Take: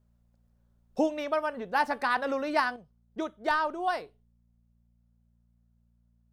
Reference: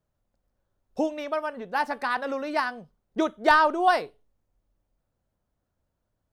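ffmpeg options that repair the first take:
-af "bandreject=f=58.1:t=h:w=4,bandreject=f=116.2:t=h:w=4,bandreject=f=174.3:t=h:w=4,bandreject=f=232.4:t=h:w=4,asetnsamples=n=441:p=0,asendcmd='2.76 volume volume 8.5dB',volume=1"

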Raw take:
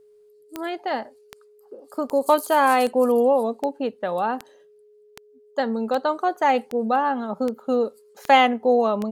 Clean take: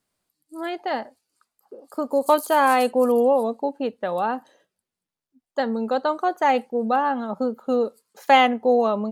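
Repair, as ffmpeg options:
-af "adeclick=t=4,bandreject=f=420:w=30"

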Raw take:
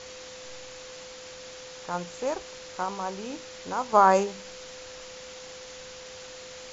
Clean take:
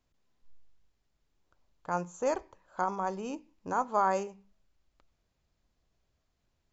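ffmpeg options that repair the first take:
-af "bandreject=f=510:w=30,afwtdn=0.0089,asetnsamples=n=441:p=0,asendcmd='3.93 volume volume -9dB',volume=1"

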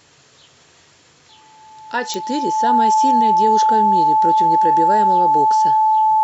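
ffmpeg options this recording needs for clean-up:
-af "adeclick=t=4,bandreject=f=870:w=30"

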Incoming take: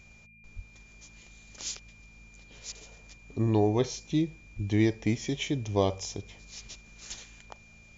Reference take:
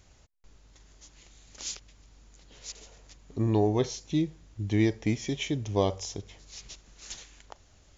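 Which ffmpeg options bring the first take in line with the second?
-filter_complex "[0:a]bandreject=f=54.6:t=h:w=4,bandreject=f=109.2:t=h:w=4,bandreject=f=163.8:t=h:w=4,bandreject=f=218.4:t=h:w=4,bandreject=f=2400:w=30,asplit=3[s0][s1][s2];[s0]afade=t=out:st=0.55:d=0.02[s3];[s1]highpass=f=140:w=0.5412,highpass=f=140:w=1.3066,afade=t=in:st=0.55:d=0.02,afade=t=out:st=0.67:d=0.02[s4];[s2]afade=t=in:st=0.67:d=0.02[s5];[s3][s4][s5]amix=inputs=3:normalize=0,asplit=3[s6][s7][s8];[s6]afade=t=out:st=4.55:d=0.02[s9];[s7]highpass=f=140:w=0.5412,highpass=f=140:w=1.3066,afade=t=in:st=4.55:d=0.02,afade=t=out:st=4.67:d=0.02[s10];[s8]afade=t=in:st=4.67:d=0.02[s11];[s9][s10][s11]amix=inputs=3:normalize=0"

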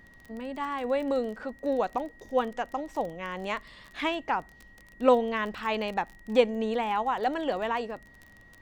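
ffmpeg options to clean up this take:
-af "adeclick=t=4,bandreject=f=1900:w=30"

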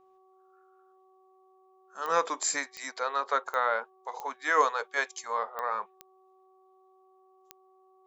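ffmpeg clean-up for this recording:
-af "adeclick=t=4,bandreject=f=377.2:t=h:w=4,bandreject=f=754.4:t=h:w=4,bandreject=f=1131.6:t=h:w=4"

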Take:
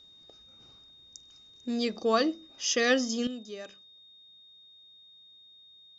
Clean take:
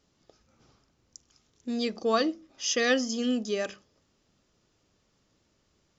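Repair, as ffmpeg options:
-af "bandreject=f=3700:w=30,asetnsamples=n=441:p=0,asendcmd='3.27 volume volume 11.5dB',volume=1"

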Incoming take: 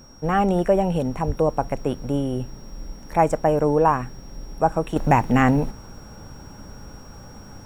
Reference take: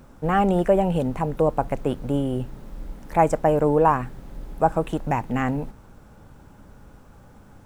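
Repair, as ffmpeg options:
-filter_complex "[0:a]bandreject=f=5600:w=30,asplit=3[s0][s1][s2];[s0]afade=t=out:st=1.26:d=0.02[s3];[s1]highpass=f=140:w=0.5412,highpass=f=140:w=1.3066,afade=t=in:st=1.26:d=0.02,afade=t=out:st=1.38:d=0.02[s4];[s2]afade=t=in:st=1.38:d=0.02[s5];[s3][s4][s5]amix=inputs=3:normalize=0,asetnsamples=n=441:p=0,asendcmd='4.96 volume volume -7dB',volume=1"

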